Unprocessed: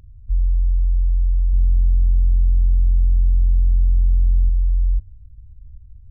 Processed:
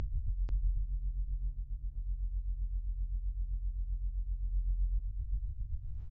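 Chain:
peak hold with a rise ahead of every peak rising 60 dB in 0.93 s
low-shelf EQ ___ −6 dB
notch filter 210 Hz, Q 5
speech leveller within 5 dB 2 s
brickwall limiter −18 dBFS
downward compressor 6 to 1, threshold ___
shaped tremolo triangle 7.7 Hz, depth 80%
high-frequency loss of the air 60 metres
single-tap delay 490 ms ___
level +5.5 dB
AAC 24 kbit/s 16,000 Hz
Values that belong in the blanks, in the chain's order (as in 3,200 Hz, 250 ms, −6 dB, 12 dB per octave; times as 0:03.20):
70 Hz, −35 dBFS, −4.5 dB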